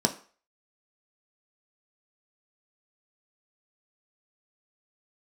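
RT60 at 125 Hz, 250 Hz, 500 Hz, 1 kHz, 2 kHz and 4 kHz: 0.30, 0.35, 0.40, 0.45, 0.40, 0.40 seconds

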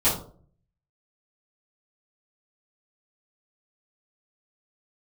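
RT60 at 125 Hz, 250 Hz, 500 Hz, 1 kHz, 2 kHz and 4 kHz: 0.80, 0.60, 0.55, 0.40, 0.30, 0.25 seconds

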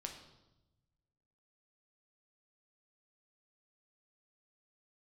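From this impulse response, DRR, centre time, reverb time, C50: 2.5 dB, 23 ms, 1.0 s, 7.5 dB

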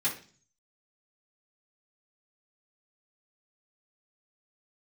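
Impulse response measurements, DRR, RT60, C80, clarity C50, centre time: −9.0 dB, 0.40 s, 14.5 dB, 9.0 dB, 20 ms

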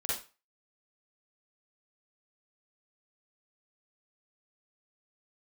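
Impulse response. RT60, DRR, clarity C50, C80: 0.30 s, −8.0 dB, −2.0 dB, 8.0 dB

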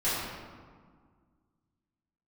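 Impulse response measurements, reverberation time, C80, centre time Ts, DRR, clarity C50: 1.8 s, 0.5 dB, 110 ms, −14.0 dB, −2.5 dB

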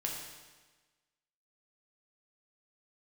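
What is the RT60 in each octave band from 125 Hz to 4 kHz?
1.3, 1.3, 1.3, 1.3, 1.3, 1.2 seconds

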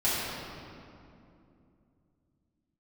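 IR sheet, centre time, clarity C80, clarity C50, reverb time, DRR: 160 ms, −1.5 dB, −3.0 dB, 2.7 s, −11.0 dB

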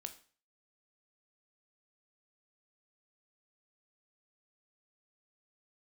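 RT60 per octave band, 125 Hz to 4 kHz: 0.45, 0.40, 0.40, 0.40, 0.40, 0.40 seconds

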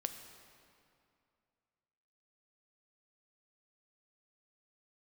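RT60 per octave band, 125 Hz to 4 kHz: 2.6, 2.6, 2.5, 2.5, 2.2, 1.8 seconds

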